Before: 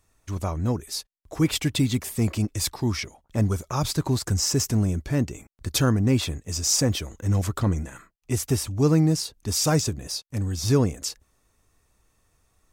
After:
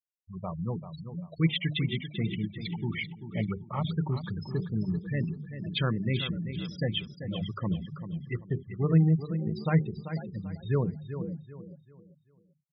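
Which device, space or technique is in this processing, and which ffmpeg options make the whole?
frequency-shifting delay pedal into a guitar cabinet: -filter_complex "[0:a]bandreject=f=50:t=h:w=6,bandreject=f=100:t=h:w=6,bandreject=f=150:t=h:w=6,bandreject=f=200:t=h:w=6,bandreject=f=250:t=h:w=6,bandreject=f=300:t=h:w=6,bandreject=f=350:t=h:w=6,bandreject=f=400:t=h:w=6,bandreject=f=450:t=h:w=6,asplit=4[a][b][c][d];[b]adelay=490,afreqshift=56,volume=-13dB[e];[c]adelay=980,afreqshift=112,volume=-22.9dB[f];[d]adelay=1470,afreqshift=168,volume=-32.8dB[g];[a][e][f][g]amix=inputs=4:normalize=0,highpass=84,equalizer=f=85:t=q:w=4:g=-9,equalizer=f=170:t=q:w=4:g=10,equalizer=f=270:t=q:w=4:g=-9,equalizer=f=2k:t=q:w=4:g=9,equalizer=f=3.1k:t=q:w=4:g=9,lowpass=f=3.8k:w=0.5412,lowpass=f=3.8k:w=1.3066,adynamicequalizer=threshold=0.00891:dfrequency=620:dqfactor=1.8:tfrequency=620:tqfactor=1.8:attack=5:release=100:ratio=0.375:range=2:mode=cutabove:tftype=bell,afftfilt=real='re*gte(hypot(re,im),0.0708)':imag='im*gte(hypot(re,im),0.0708)':win_size=1024:overlap=0.75,aecho=1:1:389|778|1167|1556:0.299|0.0985|0.0325|0.0107,volume=-6dB"

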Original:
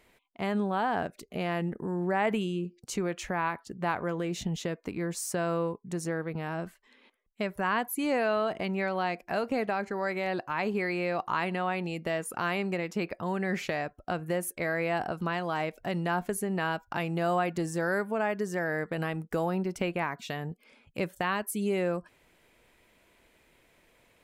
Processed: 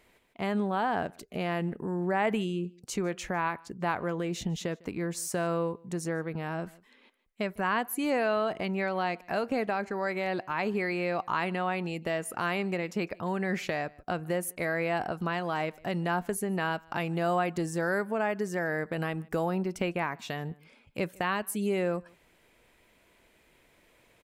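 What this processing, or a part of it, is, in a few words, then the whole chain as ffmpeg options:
ducked delay: -filter_complex "[0:a]asplit=3[a][b][c];[b]adelay=153,volume=-6dB[d];[c]apad=whole_len=1075296[e];[d][e]sidechaincompress=threshold=-46dB:ratio=20:attack=35:release=1360[f];[a][f]amix=inputs=2:normalize=0"

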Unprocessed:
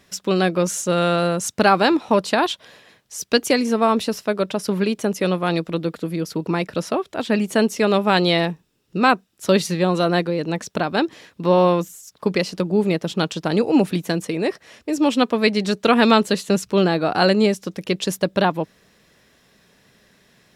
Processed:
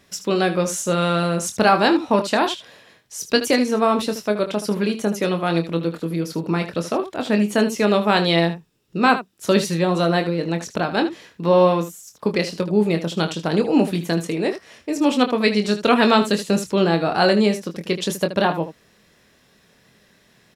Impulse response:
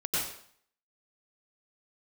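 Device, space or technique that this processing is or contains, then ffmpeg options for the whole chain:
slapback doubling: -filter_complex "[0:a]asplit=3[a][b][c];[b]adelay=24,volume=-7.5dB[d];[c]adelay=77,volume=-12dB[e];[a][d][e]amix=inputs=3:normalize=0,volume=-1dB"

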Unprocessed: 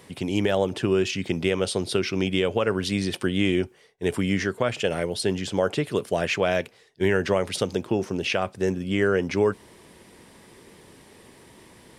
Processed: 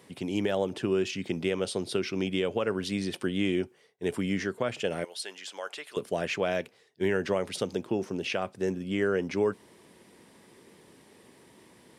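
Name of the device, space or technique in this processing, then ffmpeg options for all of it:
filter by subtraction: -filter_complex "[0:a]asettb=1/sr,asplit=3[a][b][c];[a]atrim=end=5.044[d];[b]atrim=start=5.04:end=5.97,asetpts=PTS-STARTPTS,afade=t=in:d=0.004:c=qsin,afade=t=out:st=0.926:d=0.004:c=qsin,highpass=1k[e];[c]atrim=start=5.966[f];[d][e]acrossfade=d=0.004:c1=hsin:c2=qsin[g];[g][f]acrossfade=d=0.004:c1=qsin:c2=hsin,asplit=2[h][i];[i]lowpass=220,volume=-1[j];[h][j]amix=inputs=2:normalize=0,volume=-6.5dB"

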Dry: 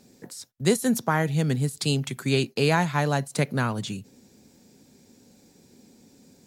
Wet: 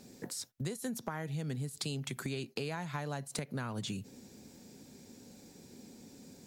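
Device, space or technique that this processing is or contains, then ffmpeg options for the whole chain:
serial compression, peaks first: -af "acompressor=threshold=-31dB:ratio=5,acompressor=threshold=-38dB:ratio=2.5,volume=1dB"

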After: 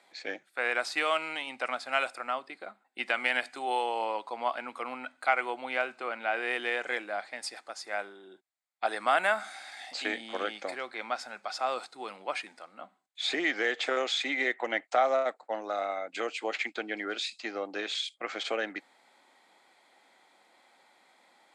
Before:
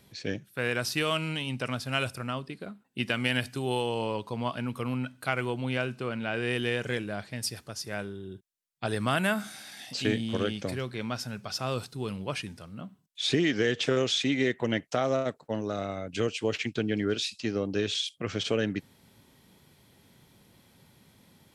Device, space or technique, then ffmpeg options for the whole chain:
phone speaker on a table: -af "highpass=f=370:w=0.5412,highpass=f=370:w=1.3066,equalizer=f=420:t=q:w=4:g=-9,equalizer=f=770:t=q:w=4:g=9,equalizer=f=1.3k:t=q:w=4:g=4,equalizer=f=2.1k:t=q:w=4:g=6,equalizer=f=2.9k:t=q:w=4:g=-6,equalizer=f=5.7k:t=q:w=4:g=-10,lowpass=f=8.1k:w=0.5412,lowpass=f=8.1k:w=1.3066"

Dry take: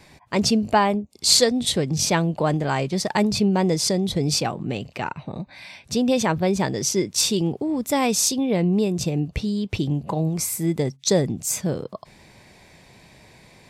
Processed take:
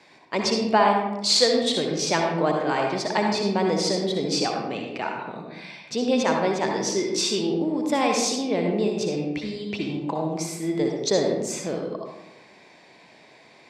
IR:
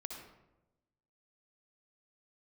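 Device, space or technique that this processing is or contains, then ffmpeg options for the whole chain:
supermarket ceiling speaker: -filter_complex "[0:a]highpass=290,lowpass=5.4k[a];[1:a]atrim=start_sample=2205[b];[a][b]afir=irnorm=-1:irlink=0,volume=3dB"

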